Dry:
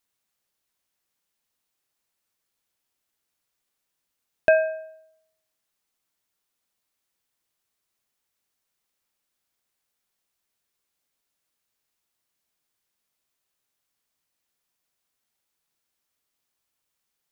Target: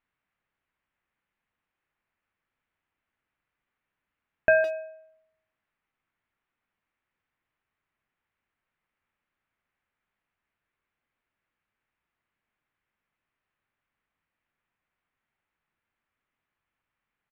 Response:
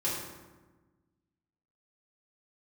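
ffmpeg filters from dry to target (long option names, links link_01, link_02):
-filter_complex "[0:a]lowpass=frequency=2300:width=0.5412,lowpass=frequency=2300:width=1.3066,equalizer=frequency=500:width=0.6:gain=-7,bandreject=frequency=60:width_type=h:width=6,bandreject=frequency=120:width_type=h:width=6,bandreject=frequency=180:width_type=h:width=6,asplit=2[link_01][link_02];[link_02]alimiter=limit=-21.5dB:level=0:latency=1,volume=0dB[link_03];[link_01][link_03]amix=inputs=2:normalize=0,asplit=2[link_04][link_05];[link_05]adelay=160,highpass=300,lowpass=3400,asoftclip=type=hard:threshold=-13.5dB,volume=-12dB[link_06];[link_04][link_06]amix=inputs=2:normalize=0"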